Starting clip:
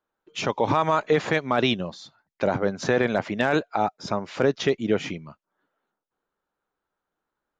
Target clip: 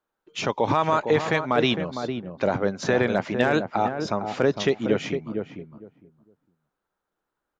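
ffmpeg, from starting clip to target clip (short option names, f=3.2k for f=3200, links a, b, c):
-filter_complex "[0:a]asplit=2[a][b];[b]adelay=457,lowpass=f=810:p=1,volume=-5.5dB,asplit=2[c][d];[d]adelay=457,lowpass=f=810:p=1,volume=0.19,asplit=2[e][f];[f]adelay=457,lowpass=f=810:p=1,volume=0.19[g];[a][c][e][g]amix=inputs=4:normalize=0"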